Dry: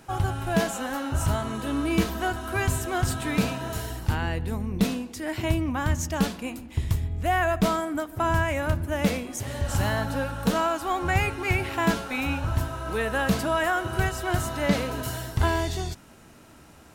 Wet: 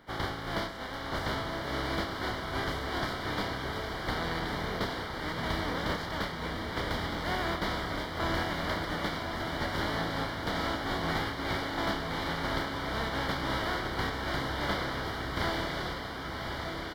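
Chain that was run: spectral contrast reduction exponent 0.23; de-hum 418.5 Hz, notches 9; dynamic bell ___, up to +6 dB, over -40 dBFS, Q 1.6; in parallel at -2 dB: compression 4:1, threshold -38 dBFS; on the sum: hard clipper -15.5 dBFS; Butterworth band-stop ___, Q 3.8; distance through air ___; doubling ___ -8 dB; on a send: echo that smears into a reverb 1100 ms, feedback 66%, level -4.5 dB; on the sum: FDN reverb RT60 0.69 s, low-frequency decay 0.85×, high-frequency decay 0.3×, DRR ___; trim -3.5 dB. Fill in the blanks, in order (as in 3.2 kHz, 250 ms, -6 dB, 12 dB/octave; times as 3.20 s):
5 kHz, 2.6 kHz, 410 m, 30 ms, 19 dB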